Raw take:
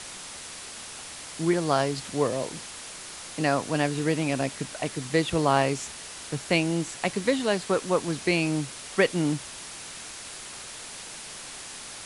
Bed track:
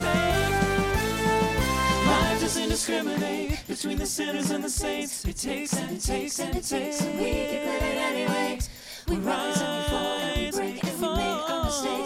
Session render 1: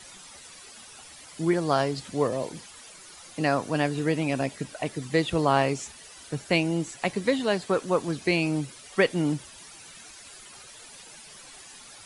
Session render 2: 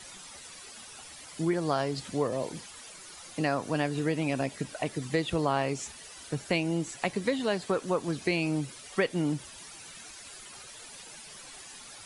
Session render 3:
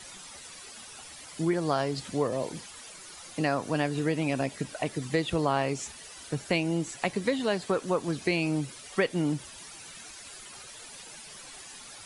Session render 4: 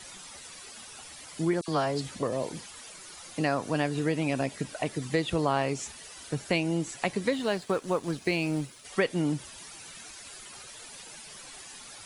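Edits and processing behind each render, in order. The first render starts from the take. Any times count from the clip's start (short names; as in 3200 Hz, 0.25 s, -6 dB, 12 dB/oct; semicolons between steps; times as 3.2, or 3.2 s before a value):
denoiser 12 dB, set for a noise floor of -41 dBFS
compressor 2:1, threshold -27 dBFS, peak gain reduction 6.5 dB
gain +1 dB
1.61–2.23 dispersion lows, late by 70 ms, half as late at 1800 Hz; 7.33–8.85 G.711 law mismatch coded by A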